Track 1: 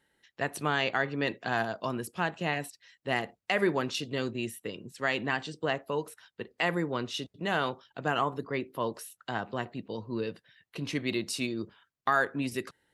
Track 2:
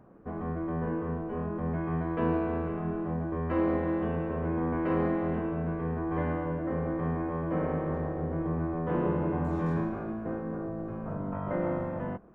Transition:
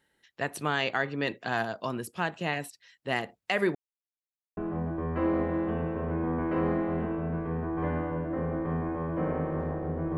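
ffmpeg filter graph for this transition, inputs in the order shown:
ffmpeg -i cue0.wav -i cue1.wav -filter_complex "[0:a]apad=whole_dur=10.17,atrim=end=10.17,asplit=2[link_01][link_02];[link_01]atrim=end=3.75,asetpts=PTS-STARTPTS,afade=type=out:start_time=3.746:duration=0.004:curve=hsin[link_03];[link_02]atrim=start=3.75:end=4.57,asetpts=PTS-STARTPTS,volume=0[link_04];[1:a]atrim=start=2.91:end=8.51,asetpts=PTS-STARTPTS,afade=type=in:duration=0.004:curve=hsin[link_05];[link_03][link_04][link_05]concat=n=3:v=0:a=1" out.wav

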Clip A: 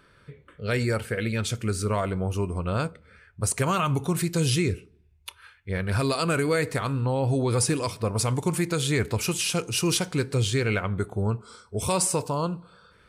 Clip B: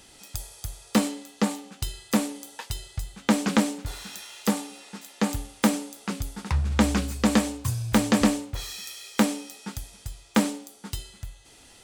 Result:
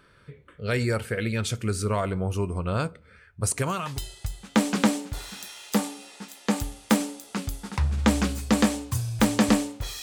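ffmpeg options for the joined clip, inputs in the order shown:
ffmpeg -i cue0.wav -i cue1.wav -filter_complex "[0:a]apad=whole_dur=10.02,atrim=end=10.02,atrim=end=4.06,asetpts=PTS-STARTPTS[link_01];[1:a]atrim=start=2.25:end=8.75,asetpts=PTS-STARTPTS[link_02];[link_01][link_02]acrossfade=duration=0.54:curve1=tri:curve2=tri" out.wav

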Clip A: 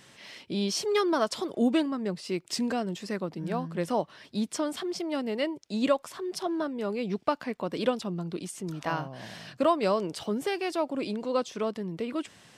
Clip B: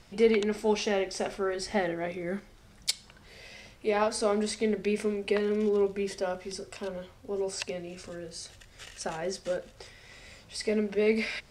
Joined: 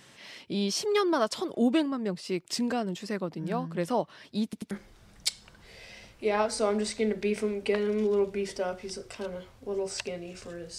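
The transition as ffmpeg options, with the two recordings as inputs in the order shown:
ffmpeg -i cue0.wav -i cue1.wav -filter_complex "[0:a]apad=whole_dur=10.78,atrim=end=10.78,asplit=3[link_01][link_02][link_03];[link_01]atrim=end=4.532[link_04];[link_02]atrim=start=4.438:end=4.532[link_05];[link_03]atrim=start=4.438:end=4.532[link_06];[1:a]atrim=start=2.328:end=8.4[link_07];[link_04][link_05]acrossfade=duration=0.004:curve1=hsin:curve2=hsin[link_08];[link_08][link_06]acrossfade=duration=0.004:curve1=hsin:curve2=hsin[link_09];[link_09][link_07]acrossfade=duration=0.004:curve1=hsin:curve2=hsin" out.wav

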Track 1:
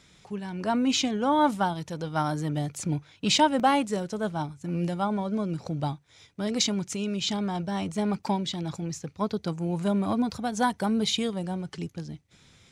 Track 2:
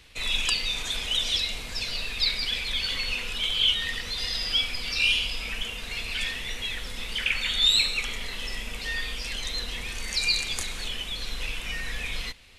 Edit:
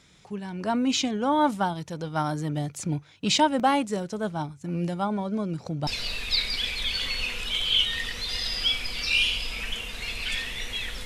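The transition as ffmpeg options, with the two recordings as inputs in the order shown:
ffmpeg -i cue0.wav -i cue1.wav -filter_complex "[0:a]apad=whole_dur=11.05,atrim=end=11.05,atrim=end=5.872[link_01];[1:a]atrim=start=1.758:end=6.94[link_02];[link_01][link_02]acrossfade=duration=0.004:curve1=hsin:curve2=hsin" out.wav

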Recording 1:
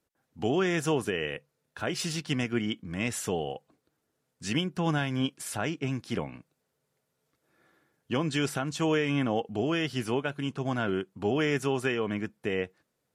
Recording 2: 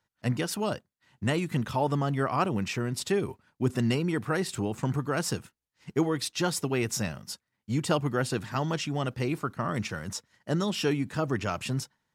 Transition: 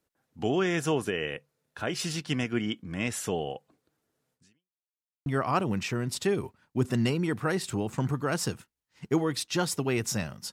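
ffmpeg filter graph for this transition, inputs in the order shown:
ffmpeg -i cue0.wav -i cue1.wav -filter_complex "[0:a]apad=whole_dur=10.52,atrim=end=10.52,asplit=2[link_01][link_02];[link_01]atrim=end=4.81,asetpts=PTS-STARTPTS,afade=type=out:start_time=4.34:duration=0.47:curve=exp[link_03];[link_02]atrim=start=4.81:end=5.26,asetpts=PTS-STARTPTS,volume=0[link_04];[1:a]atrim=start=2.11:end=7.37,asetpts=PTS-STARTPTS,afade=type=in:duration=0.004:curve=hsin[link_05];[link_03][link_04][link_05]concat=n=3:v=0:a=1" out.wav

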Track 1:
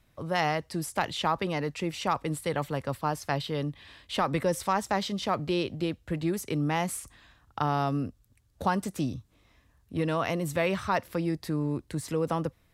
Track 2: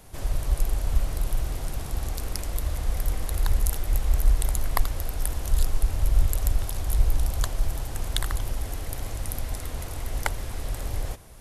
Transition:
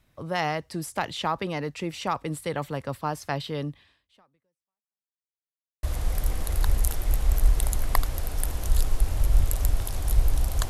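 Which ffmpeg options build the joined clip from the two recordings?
ffmpeg -i cue0.wav -i cue1.wav -filter_complex "[0:a]apad=whole_dur=10.69,atrim=end=10.69,asplit=2[link_01][link_02];[link_01]atrim=end=5.19,asetpts=PTS-STARTPTS,afade=type=out:start_time=3.71:duration=1.48:curve=exp[link_03];[link_02]atrim=start=5.19:end=5.83,asetpts=PTS-STARTPTS,volume=0[link_04];[1:a]atrim=start=2.65:end=7.51,asetpts=PTS-STARTPTS,afade=type=in:duration=0.004:curve=hsin[link_05];[link_03][link_04][link_05]concat=n=3:v=0:a=1" out.wav

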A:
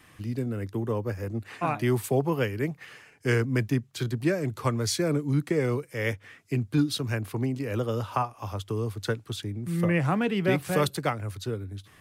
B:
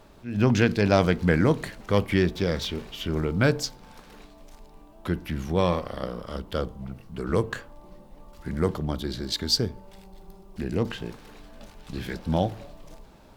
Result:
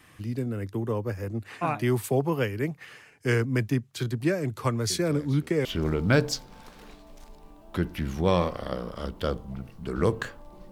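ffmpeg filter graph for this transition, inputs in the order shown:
ffmpeg -i cue0.wav -i cue1.wav -filter_complex "[1:a]asplit=2[link_01][link_02];[0:a]apad=whole_dur=10.71,atrim=end=10.71,atrim=end=5.652[link_03];[link_02]atrim=start=2.958:end=8.02[link_04];[link_01]atrim=start=2.21:end=2.96,asetpts=PTS-STARTPTS,volume=-18dB,afade=type=in:duration=0.004:curve=hsin,afade=type=out:start_time=0.746:duration=0.004:curve=hsin,adelay=4900[link_05];[link_03][link_04]acrossfade=duration=0.004:curve1=hsin:curve2=hsin[link_06];[link_06][link_05]amix=inputs=2:normalize=0" out.wav

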